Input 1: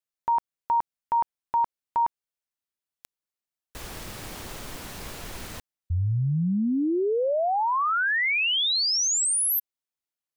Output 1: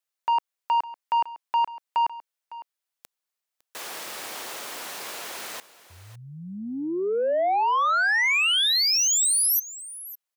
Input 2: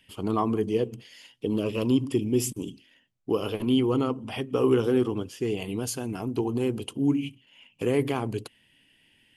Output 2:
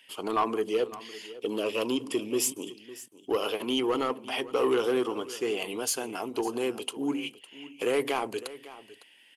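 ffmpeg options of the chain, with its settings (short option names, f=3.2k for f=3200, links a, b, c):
-filter_complex "[0:a]highpass=510,asoftclip=type=tanh:threshold=-23dB,asplit=2[a][b];[b]aecho=0:1:556:0.141[c];[a][c]amix=inputs=2:normalize=0,volume=5dB"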